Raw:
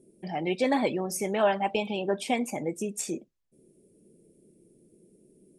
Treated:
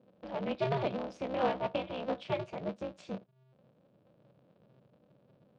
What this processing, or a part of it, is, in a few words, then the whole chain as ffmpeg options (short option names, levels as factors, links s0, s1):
ring modulator pedal into a guitar cabinet: -af "asubboost=boost=10.5:cutoff=67,aeval=exprs='val(0)*sgn(sin(2*PI*130*n/s))':c=same,highpass=110,equalizer=f=130:t=q:w=4:g=5,equalizer=f=190:t=q:w=4:g=10,equalizer=f=580:t=q:w=4:g=9,equalizer=f=2000:t=q:w=4:g=-6,lowpass=f=4000:w=0.5412,lowpass=f=4000:w=1.3066,volume=0.376"